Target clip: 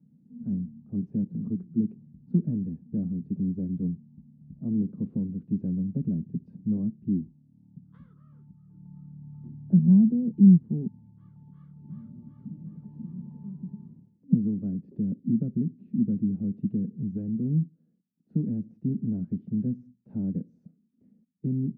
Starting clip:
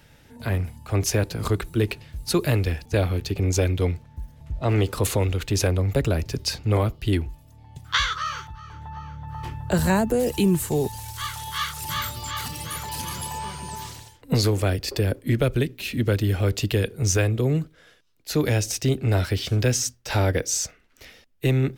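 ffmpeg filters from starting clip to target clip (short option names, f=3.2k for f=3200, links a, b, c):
-af "asuperpass=centerf=200:order=4:qfactor=2.8,volume=6.5dB"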